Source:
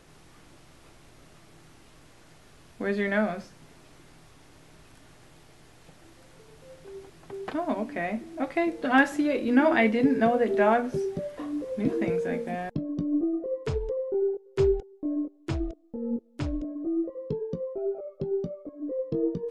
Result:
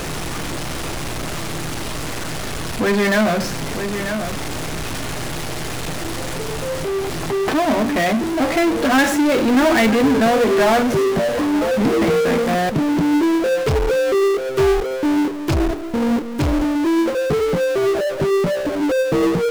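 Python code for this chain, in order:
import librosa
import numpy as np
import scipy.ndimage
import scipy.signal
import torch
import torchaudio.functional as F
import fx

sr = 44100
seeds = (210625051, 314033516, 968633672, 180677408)

y = x + 10.0 ** (-20.0 / 20.0) * np.pad(x, (int(943 * sr / 1000.0), 0))[:len(x)]
y = fx.power_curve(y, sr, exponent=0.35)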